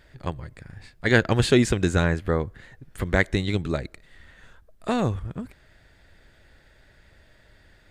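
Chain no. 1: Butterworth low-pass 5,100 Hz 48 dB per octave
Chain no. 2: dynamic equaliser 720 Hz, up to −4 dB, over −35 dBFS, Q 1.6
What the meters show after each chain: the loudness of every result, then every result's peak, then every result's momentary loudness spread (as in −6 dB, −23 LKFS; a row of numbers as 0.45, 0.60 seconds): −24.5, −25.0 LKFS; −2.5, −3.0 dBFS; 18, 18 LU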